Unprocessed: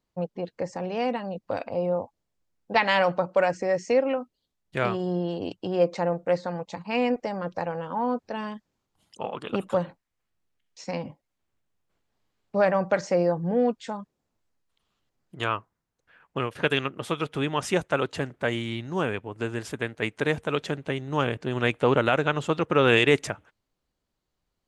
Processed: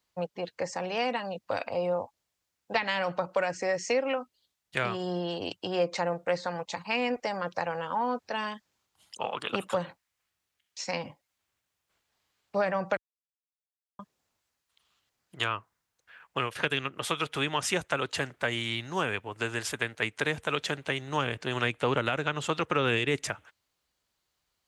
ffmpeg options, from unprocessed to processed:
ffmpeg -i in.wav -filter_complex "[0:a]asplit=3[link_01][link_02][link_03];[link_01]atrim=end=12.97,asetpts=PTS-STARTPTS,afade=type=out:start_time=12.966:duration=0.004:curve=hsin[link_04];[link_02]atrim=start=12.97:end=13.99,asetpts=PTS-STARTPTS,volume=0[link_05];[link_03]atrim=start=13.99,asetpts=PTS-STARTPTS,afade=type=in:duration=0.004:curve=hsin[link_06];[link_04][link_05][link_06]concat=n=3:v=0:a=1,highpass=74,equalizer=frequency=210:width=0.31:gain=-14,acrossover=split=370[link_07][link_08];[link_08]acompressor=threshold=-33dB:ratio=10[link_09];[link_07][link_09]amix=inputs=2:normalize=0,volume=7.5dB" out.wav

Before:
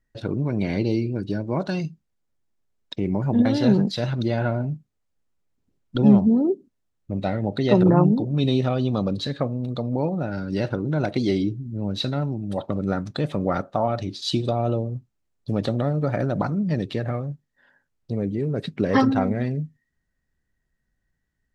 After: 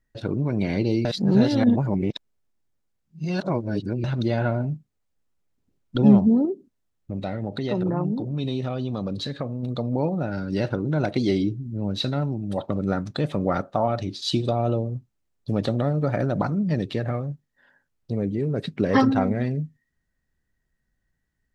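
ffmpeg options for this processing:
ffmpeg -i in.wav -filter_complex "[0:a]asettb=1/sr,asplit=3[link_01][link_02][link_03];[link_01]atrim=end=6.454[link_04];[link_02]atrim=start=6.45:end=9.63,asetpts=PTS-STARTPTS,afade=type=in:duration=0.004:curve=qsin,afade=type=out:start_time=3.176:duration=0.004:curve=qsin,acompressor=threshold=-27dB:ratio=2:attack=3.2:release=140:knee=1:detection=peak[link_05];[link_03]atrim=start=9.626[link_06];[link_04][link_05]acrossfade=duration=0.004:curve1=hsin:curve2=qsin[link_07];[link_07][link_06]acrossfade=duration=0.004:curve1=qsin:curve2=hsin,asplit=3[link_08][link_09][link_10];[link_08]atrim=end=1.052[link_11];[link_09]atrim=start=1.048:end=4.042,asetpts=PTS-STARTPTS,areverse[link_12];[link_10]atrim=start=4.038[link_13];[link_11][link_12]acrossfade=duration=0.004:curve1=hsin:curve2=hsin[link_14];[link_14][link_13]acrossfade=duration=0.004:curve1=hsin:curve2=hsin" out.wav

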